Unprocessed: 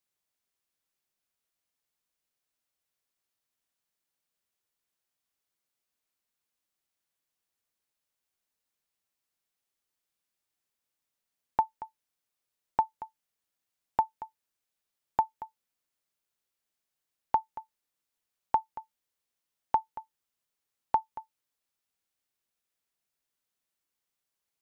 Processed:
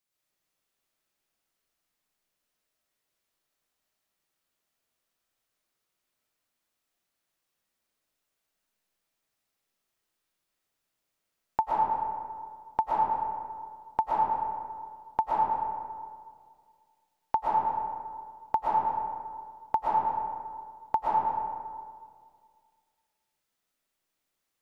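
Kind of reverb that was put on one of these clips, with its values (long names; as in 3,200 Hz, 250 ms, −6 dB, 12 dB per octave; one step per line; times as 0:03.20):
comb and all-pass reverb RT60 2 s, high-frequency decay 0.45×, pre-delay 80 ms, DRR −6.5 dB
level −1 dB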